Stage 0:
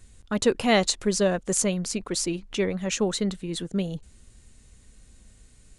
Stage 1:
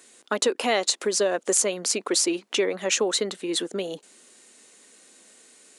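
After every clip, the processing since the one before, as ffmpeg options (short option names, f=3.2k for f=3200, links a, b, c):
-af "acompressor=threshold=-25dB:ratio=12,highpass=f=310:w=0.5412,highpass=f=310:w=1.3066,volume=8dB"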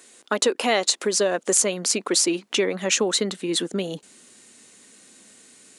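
-af "asubboost=boost=4:cutoff=220,volume=2.5dB"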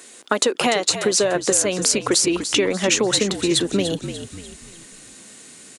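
-filter_complex "[0:a]acompressor=threshold=-22dB:ratio=6,asplit=5[a][b][c][d][e];[b]adelay=294,afreqshift=-54,volume=-10dB[f];[c]adelay=588,afreqshift=-108,volume=-17.7dB[g];[d]adelay=882,afreqshift=-162,volume=-25.5dB[h];[e]adelay=1176,afreqshift=-216,volume=-33.2dB[i];[a][f][g][h][i]amix=inputs=5:normalize=0,volume=7dB"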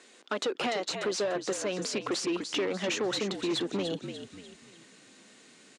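-af "asoftclip=type=hard:threshold=-17dB,highpass=170,lowpass=4.8k,volume=-8dB"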